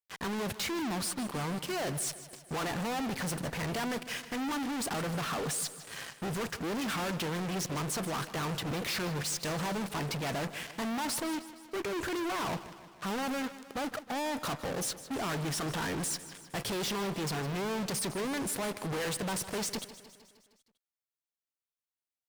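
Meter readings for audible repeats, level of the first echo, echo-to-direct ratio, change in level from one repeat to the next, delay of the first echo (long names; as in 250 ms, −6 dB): 5, −15.0 dB, −13.0 dB, −4.5 dB, 155 ms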